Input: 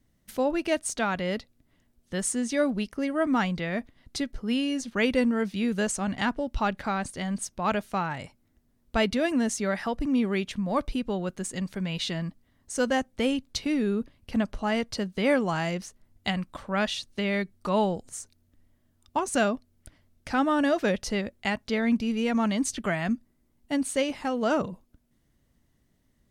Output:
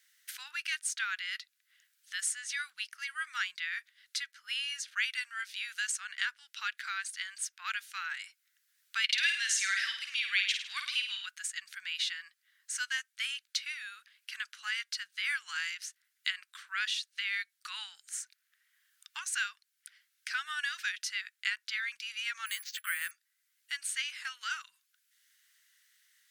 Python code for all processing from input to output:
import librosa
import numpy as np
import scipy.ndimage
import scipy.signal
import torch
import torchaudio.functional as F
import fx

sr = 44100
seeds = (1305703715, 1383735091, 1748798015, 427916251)

y = fx.chain(x, sr, fx.weighting(curve='D'),
    fx.room_flutter(wall_m=8.9, rt60_s=0.5), at=(9.04, 11.26))
y = fx.chain(y, sr, fx.low_shelf(hz=320.0, db=7.0),
    fx.resample_bad(factor=4, down='filtered', up='hold'), at=(22.46, 23.11))
y = scipy.signal.sosfilt(scipy.signal.ellip(4, 1.0, 60, 1500.0, 'highpass', fs=sr, output='sos'), y)
y = fx.band_squash(y, sr, depth_pct=40)